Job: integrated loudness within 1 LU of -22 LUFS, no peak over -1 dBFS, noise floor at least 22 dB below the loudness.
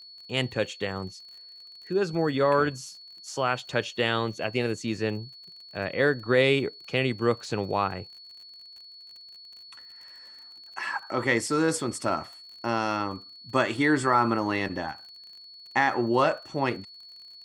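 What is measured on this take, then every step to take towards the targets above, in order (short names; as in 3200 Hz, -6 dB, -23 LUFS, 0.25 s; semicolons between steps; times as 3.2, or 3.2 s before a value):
ticks 40/s; steady tone 4400 Hz; tone level -45 dBFS; loudness -27.0 LUFS; peak -8.0 dBFS; loudness target -22.0 LUFS
-> de-click; notch 4400 Hz, Q 30; gain +5 dB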